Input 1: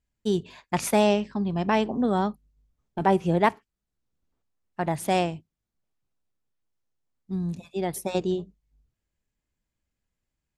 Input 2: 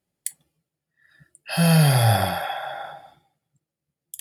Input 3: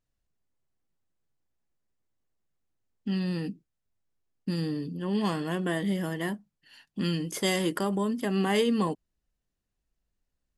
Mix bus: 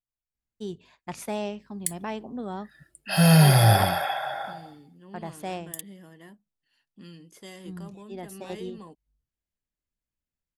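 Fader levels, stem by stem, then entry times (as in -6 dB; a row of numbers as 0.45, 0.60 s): -10.5, +0.5, -17.5 dB; 0.35, 1.60, 0.00 s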